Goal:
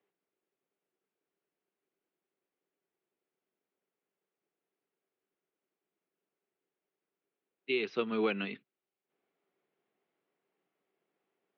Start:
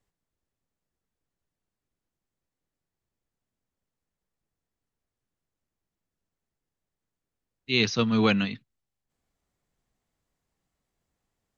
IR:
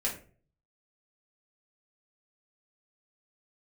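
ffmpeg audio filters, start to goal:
-af "aemphasis=mode=production:type=75kf,acompressor=threshold=0.0447:ratio=5,highpass=f=210:w=0.5412,highpass=f=210:w=1.3066,equalizer=f=240:t=q:w=4:g=-6,equalizer=f=390:t=q:w=4:g=9,equalizer=f=1000:t=q:w=4:g=-3,equalizer=f=1800:t=q:w=4:g=-4,lowpass=f=2600:w=0.5412,lowpass=f=2600:w=1.3066"

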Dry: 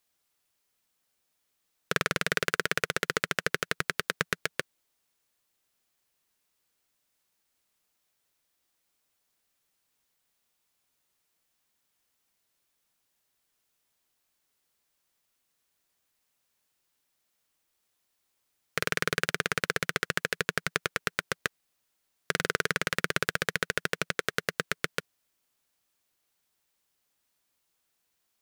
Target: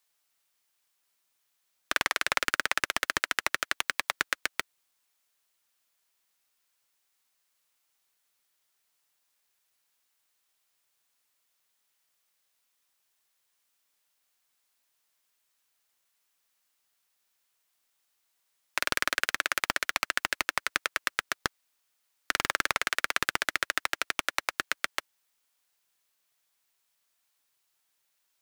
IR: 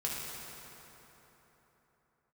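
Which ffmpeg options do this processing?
-af "highpass=710,aeval=exprs='val(0)*sgn(sin(2*PI*130*n/s))':c=same,volume=1.19"

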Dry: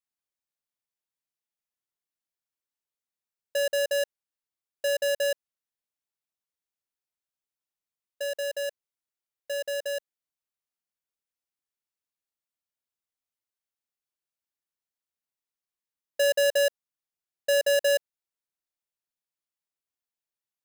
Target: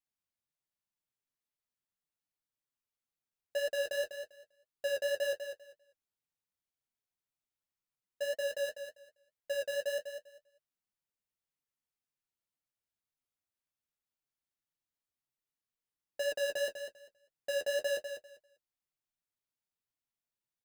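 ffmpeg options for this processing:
-filter_complex "[0:a]bass=f=250:g=7,treble=f=4000:g=-2,asoftclip=type=hard:threshold=0.0376,flanger=delay=6.3:depth=5.6:regen=24:speed=1.9:shape=triangular,asplit=2[s0][s1];[s1]aecho=0:1:198|396|594:0.376|0.0714|0.0136[s2];[s0][s2]amix=inputs=2:normalize=0"

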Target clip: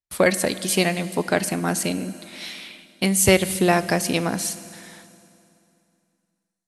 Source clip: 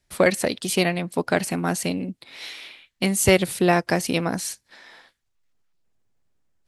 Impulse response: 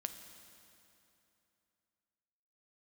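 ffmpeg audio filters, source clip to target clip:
-filter_complex "[0:a]agate=range=0.0501:threshold=0.00316:ratio=16:detection=peak,asplit=2[s0][s1];[1:a]atrim=start_sample=2205,highshelf=f=4500:g=8.5[s2];[s1][s2]afir=irnorm=-1:irlink=0,volume=0.944[s3];[s0][s3]amix=inputs=2:normalize=0,volume=0.596"

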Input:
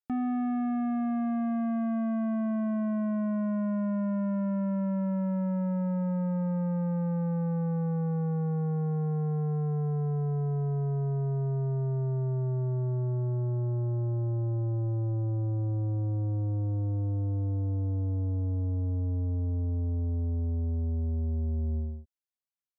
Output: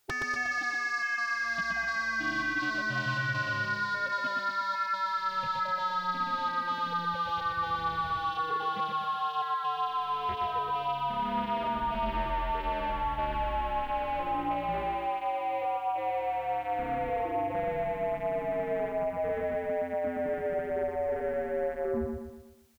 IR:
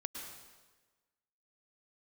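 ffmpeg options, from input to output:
-af "afftfilt=real='re*lt(hypot(re,im),0.0355)':imag='im*lt(hypot(re,im),0.0355)':win_size=1024:overlap=0.75,aeval=exprs='0.015*sin(PI/2*3.98*val(0)/0.015)':c=same,aecho=1:1:121|242|363|484|605|726:0.631|0.303|0.145|0.0698|0.0335|0.0161,volume=2.66"

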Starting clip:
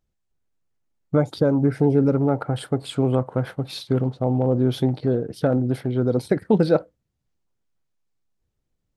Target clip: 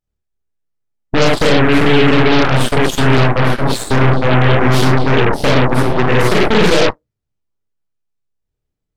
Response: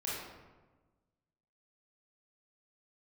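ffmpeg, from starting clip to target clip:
-filter_complex "[1:a]atrim=start_sample=2205,atrim=end_sample=6174[s0];[0:a][s0]afir=irnorm=-1:irlink=0,apsyclip=4.47,aeval=exprs='1.06*(cos(1*acos(clip(val(0)/1.06,-1,1)))-cos(1*PI/2))+0.0841*(cos(3*acos(clip(val(0)/1.06,-1,1)))-cos(3*PI/2))+0.0335*(cos(5*acos(clip(val(0)/1.06,-1,1)))-cos(5*PI/2))+0.0944*(cos(7*acos(clip(val(0)/1.06,-1,1)))-cos(7*PI/2))+0.422*(cos(8*acos(clip(val(0)/1.06,-1,1)))-cos(8*PI/2))':c=same,volume=0.473"

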